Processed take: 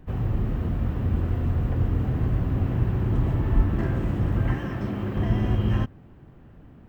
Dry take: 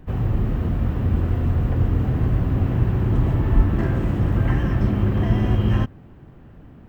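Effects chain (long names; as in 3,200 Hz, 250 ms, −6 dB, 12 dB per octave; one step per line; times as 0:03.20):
0:04.54–0:05.17: high-pass filter 200 Hz 6 dB per octave
level −4 dB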